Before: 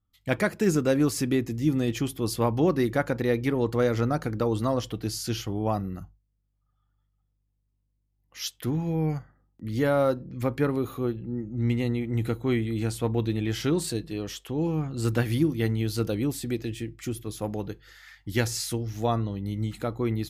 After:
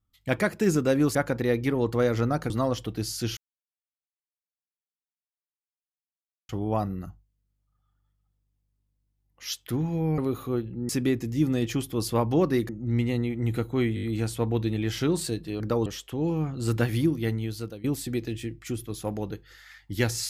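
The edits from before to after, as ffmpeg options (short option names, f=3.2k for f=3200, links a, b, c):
-filter_complex "[0:a]asplit=14[a][b][c][d][e][f][g][h][i][j][k][l][m][n];[a]atrim=end=1.152[o];[b]atrim=start=2.948:end=4.302[p];[c]atrim=start=4.558:end=5.43,asetpts=PTS-STARTPTS,afade=t=out:st=0.868:d=0.004:c=hsin,apad=pad_dur=3.12[q];[d]atrim=start=5.43:end=9.122,asetpts=PTS-STARTPTS,afade=t=in:d=0.004:c=hsin[r];[e]atrim=start=10.688:end=11.402[s];[f]atrim=start=1.148:end=2.952[t];[g]atrim=start=11.398:end=12.682[u];[h]atrim=start=12.658:end=12.682[v];[i]atrim=start=12.658:end=12.682[w];[j]atrim=start=12.658:end=12.682[x];[k]atrim=start=12.658:end=14.232[y];[l]atrim=start=4.298:end=4.562[z];[m]atrim=start=14.228:end=16.21,asetpts=PTS-STARTPTS,afade=t=out:st=1.032:d=0.95:c=qsin:silence=0.11885[aa];[n]atrim=start=16.21,asetpts=PTS-STARTPTS,afade=t=in:d=0.004:c=hsin:silence=0.11885[ab];[o][p]acrossfade=d=0.004:c1=hsin:c2=hsin[ac];[q][r]concat=n=2:v=0:a=1[ad];[ac][ad]acrossfade=d=0.004:c1=hsin:c2=hsin[ae];[ae][s]acrossfade=d=0.004:c1=hsin:c2=hsin[af];[af][t]acrossfade=d=0.004:c1=hsin:c2=hsin[ag];[ag][u]acrossfade=d=0.004:c1=hsin:c2=hsin[ah];[ah][v]acrossfade=d=0.004:c1=hsin:c2=hsin[ai];[ai][w]acrossfade=d=0.004:c1=hsin:c2=hsin[aj];[aj][x]acrossfade=d=0.004:c1=hsin:c2=hsin[ak];[ak][y]acrossfade=d=0.004:c1=hsin:c2=hsin[al];[al][z]acrossfade=d=0.004:c1=hsin:c2=hsin[am];[aa][ab]concat=n=2:v=0:a=1[an];[am][an]acrossfade=d=0.004:c1=hsin:c2=hsin"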